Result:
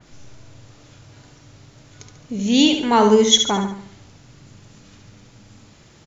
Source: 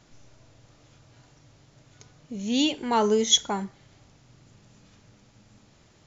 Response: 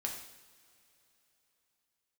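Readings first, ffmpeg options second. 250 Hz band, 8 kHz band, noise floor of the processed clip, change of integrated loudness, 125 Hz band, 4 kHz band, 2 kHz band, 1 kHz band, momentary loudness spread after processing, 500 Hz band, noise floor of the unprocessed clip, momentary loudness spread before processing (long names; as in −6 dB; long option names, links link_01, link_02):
+9.5 dB, can't be measured, −50 dBFS, +7.5 dB, +10.0 dB, +7.0 dB, +8.5 dB, +8.0 dB, 14 LU, +8.5 dB, −59 dBFS, 17 LU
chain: -af "equalizer=frequency=690:width=1.5:gain=-2.5,aecho=1:1:71|142|213|284|355:0.447|0.197|0.0865|0.0381|0.0167,adynamicequalizer=threshold=0.00891:dfrequency=3200:dqfactor=0.7:tfrequency=3200:tqfactor=0.7:attack=5:release=100:ratio=0.375:range=3:mode=cutabove:tftype=highshelf,volume=8.5dB"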